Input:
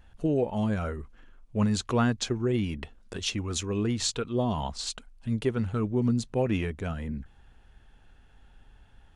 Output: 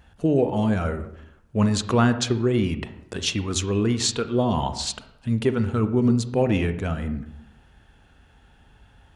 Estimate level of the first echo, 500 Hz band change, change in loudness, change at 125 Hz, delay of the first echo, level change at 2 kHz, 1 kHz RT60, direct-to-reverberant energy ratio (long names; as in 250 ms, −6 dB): no echo audible, +6.0 dB, +5.5 dB, +5.5 dB, no echo audible, +6.0 dB, 0.75 s, 9.5 dB